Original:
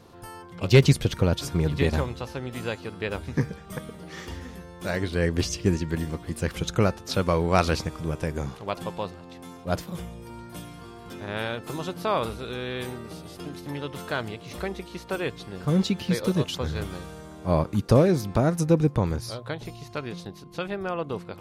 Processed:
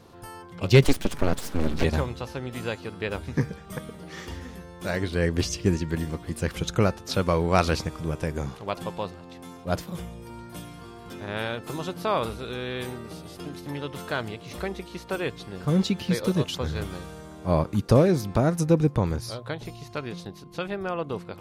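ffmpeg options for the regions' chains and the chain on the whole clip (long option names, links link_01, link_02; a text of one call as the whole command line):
ffmpeg -i in.wav -filter_complex "[0:a]asettb=1/sr,asplit=3[link_01][link_02][link_03];[link_01]atrim=end=0.844[link_04];[link_02]atrim=start=0.84:end=1.84,asetpts=PTS-STARTPTS,afade=type=in:duration=0.004:curve=qsin,afade=type=out:start_time=0.996:duration=0.004:curve=qsin,highpass=frequency=43:width=0.5412,highpass=frequency=43:width=1.3066,equalizer=frequency=75:width=6.6:gain=7,aeval=exprs='abs(val(0))':channel_layout=same[link_05];[link_03]atrim=start=1.836[link_06];[link_04][link_05]acrossfade=duration=0.004:curve1=hsin:curve2=qsin[link_07];[link_07][link_06]acrossfade=duration=0.004:curve1=qsin:curve2=hsin" out.wav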